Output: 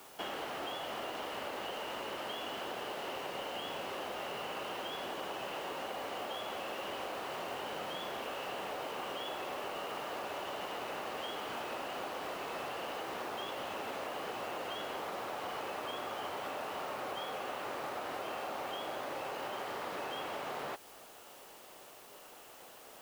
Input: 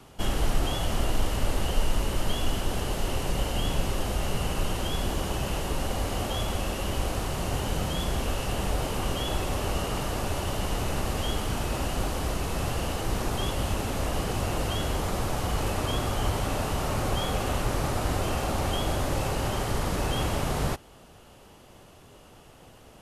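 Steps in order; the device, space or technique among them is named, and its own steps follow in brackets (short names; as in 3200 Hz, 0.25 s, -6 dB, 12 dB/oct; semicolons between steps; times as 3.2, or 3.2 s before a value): baby monitor (BPF 460–3200 Hz; compressor, threshold -37 dBFS, peak gain reduction 8.5 dB; white noise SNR 17 dB)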